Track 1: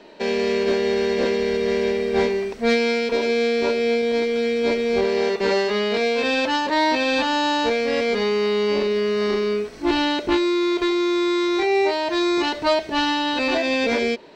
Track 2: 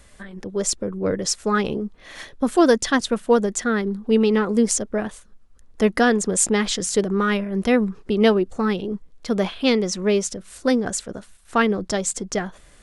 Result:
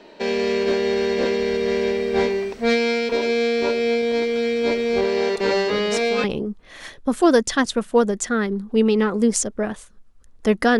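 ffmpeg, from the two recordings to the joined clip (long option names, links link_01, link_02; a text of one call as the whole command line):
ffmpeg -i cue0.wav -i cue1.wav -filter_complex "[1:a]asplit=2[link_01][link_02];[0:a]apad=whole_dur=10.79,atrim=end=10.79,atrim=end=6.242[link_03];[link_02]atrim=start=1.588:end=6.14[link_04];[link_01]atrim=start=0.72:end=1.59,asetpts=PTS-STARTPTS,volume=-9dB,afade=type=in:duration=0.004:curve=hsin,afade=type=out:start_time=0.866:duration=0.004:curve=hsin,adelay=236817S[link_05];[link_03][link_04]acrossfade=duration=0.004:curve1=hsin:curve2=hsin[link_06];[link_06][link_05]amix=inputs=2:normalize=0" out.wav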